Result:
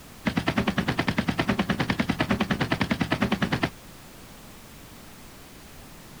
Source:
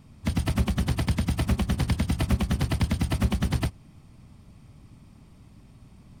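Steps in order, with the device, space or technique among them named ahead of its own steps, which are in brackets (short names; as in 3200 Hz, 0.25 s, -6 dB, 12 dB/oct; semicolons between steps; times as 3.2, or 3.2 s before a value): horn gramophone (BPF 230–4000 Hz; bell 1700 Hz +5 dB 0.53 oct; wow and flutter; pink noise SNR 18 dB); gain +6.5 dB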